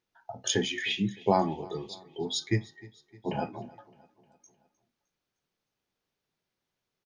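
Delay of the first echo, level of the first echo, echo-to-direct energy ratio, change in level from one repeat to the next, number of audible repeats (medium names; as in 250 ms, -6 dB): 307 ms, -22.0 dB, -20.5 dB, -5.5 dB, 3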